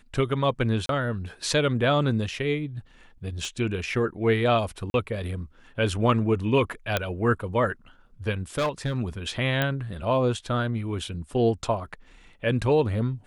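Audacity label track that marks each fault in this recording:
0.860000	0.890000	dropout 32 ms
3.450000	3.450000	pop
4.900000	4.940000	dropout 41 ms
6.970000	6.970000	pop -8 dBFS
8.580000	8.990000	clipped -21 dBFS
9.620000	9.620000	pop -11 dBFS

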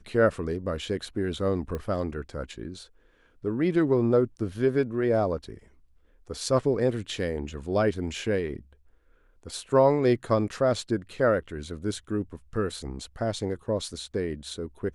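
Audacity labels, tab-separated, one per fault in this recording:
1.750000	1.750000	pop -21 dBFS

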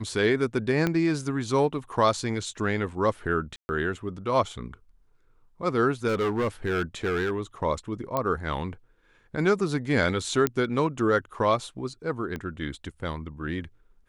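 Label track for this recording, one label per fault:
0.870000	0.870000	pop -12 dBFS
3.560000	3.690000	dropout 130 ms
6.070000	7.310000	clipped -22 dBFS
8.170000	8.170000	pop -13 dBFS
10.470000	10.470000	pop -9 dBFS
12.360000	12.360000	pop -21 dBFS

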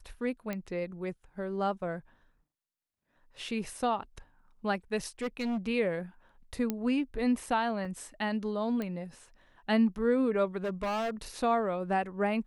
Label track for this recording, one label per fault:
0.530000	0.530000	pop -21 dBFS
5.220000	5.580000	clipped -29 dBFS
6.700000	6.700000	pop -17 dBFS
7.850000	7.850000	dropout 3.4 ms
8.820000	8.820000	pop -23 dBFS
10.640000	11.100000	clipped -29 dBFS

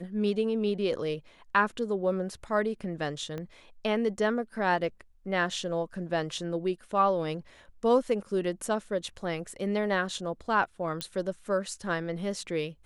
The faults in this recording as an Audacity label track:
3.380000	3.380000	pop -24 dBFS
11.010000	11.010000	pop -17 dBFS

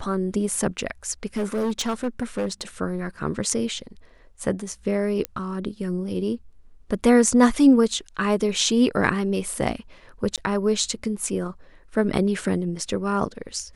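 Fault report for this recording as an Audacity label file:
1.370000	2.620000	clipped -20.5 dBFS
5.250000	5.250000	pop -11 dBFS
10.360000	10.380000	dropout 17 ms

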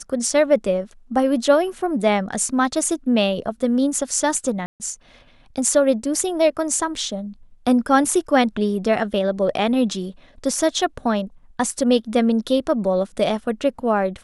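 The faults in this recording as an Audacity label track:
4.660000	4.800000	dropout 139 ms

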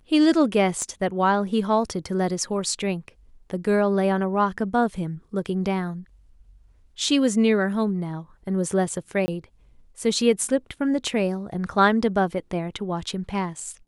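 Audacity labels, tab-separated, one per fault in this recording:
0.820000	0.820000	pop -18 dBFS
9.260000	9.280000	dropout 20 ms

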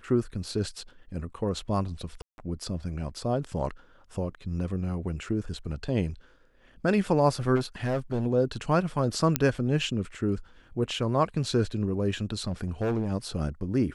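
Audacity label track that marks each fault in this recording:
2.220000	2.380000	dropout 161 ms
7.550000	8.270000	clipped -23 dBFS
9.360000	9.360000	pop -5 dBFS
12.470000	13.120000	clipped -23.5 dBFS

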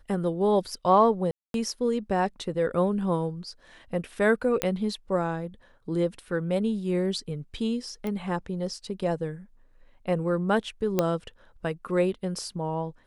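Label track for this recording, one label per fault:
1.310000	1.540000	dropout 232 ms
4.620000	4.620000	pop -9 dBFS
8.070000	8.070000	pop -20 dBFS
10.990000	10.990000	pop -9 dBFS

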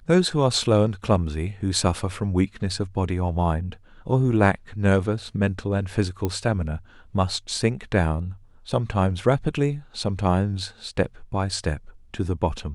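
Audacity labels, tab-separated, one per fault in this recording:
6.250000	6.250000	pop -12 dBFS

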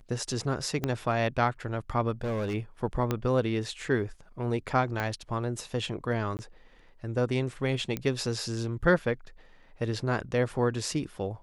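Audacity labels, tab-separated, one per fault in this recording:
0.840000	0.840000	pop -15 dBFS
2.210000	2.550000	clipped -27.5 dBFS
3.110000	3.110000	pop -14 dBFS
5.000000	5.000000	pop -17 dBFS
6.370000	6.390000	dropout 19 ms
7.970000	7.970000	pop -17 dBFS

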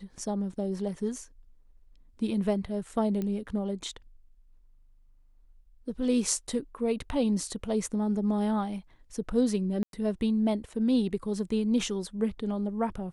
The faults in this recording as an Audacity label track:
3.220000	3.220000	pop -21 dBFS
9.830000	9.930000	dropout 102 ms

